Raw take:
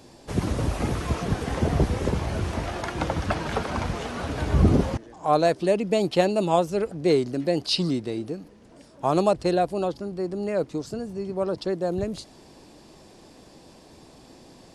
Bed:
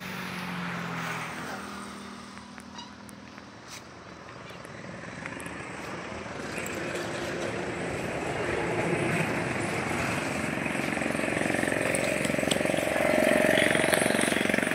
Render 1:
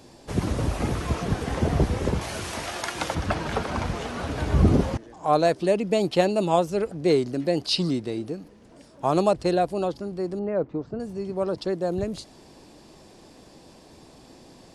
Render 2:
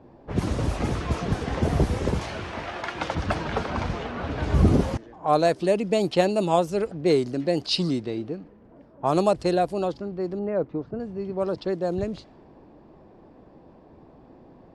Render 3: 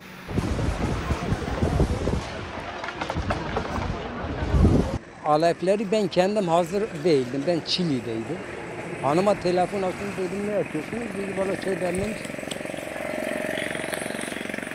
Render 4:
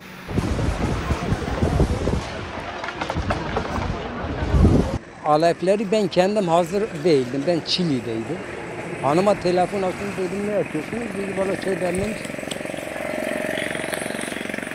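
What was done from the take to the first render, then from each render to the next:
0:02.21–0:03.15: spectral tilt +3 dB per octave; 0:10.39–0:11.00: low-pass filter 1,500 Hz
low-pass that shuts in the quiet parts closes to 1,100 Hz, open at −19 dBFS
mix in bed −5.5 dB
level +3 dB

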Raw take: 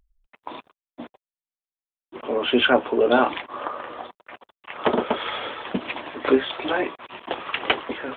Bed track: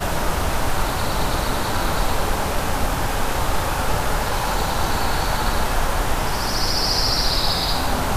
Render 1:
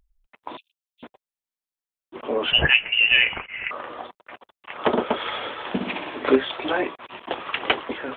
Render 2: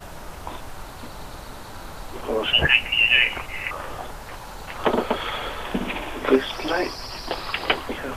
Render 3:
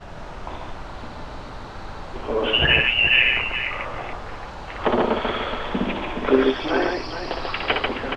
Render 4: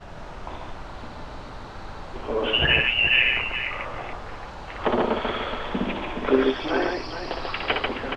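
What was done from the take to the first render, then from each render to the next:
0:00.57–0:01.03: Chebyshev high-pass filter 2,700 Hz, order 5; 0:02.52–0:03.71: voice inversion scrambler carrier 3,200 Hz; 0:05.52–0:06.36: flutter between parallel walls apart 10.5 metres, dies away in 0.68 s
mix in bed track −16 dB
high-frequency loss of the air 140 metres; on a send: multi-tap delay 61/141/423 ms −4.5/−3/−8.5 dB
level −2.5 dB

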